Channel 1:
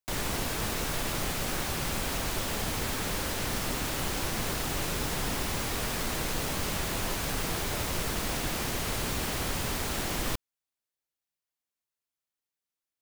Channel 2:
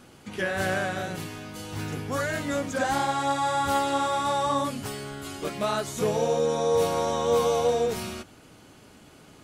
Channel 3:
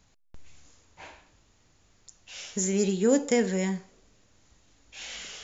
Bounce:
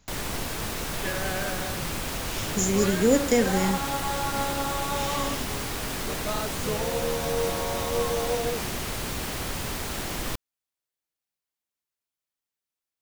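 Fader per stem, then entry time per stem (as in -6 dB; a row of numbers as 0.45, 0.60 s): 0.0, -5.0, +2.0 dB; 0.00, 0.65, 0.00 s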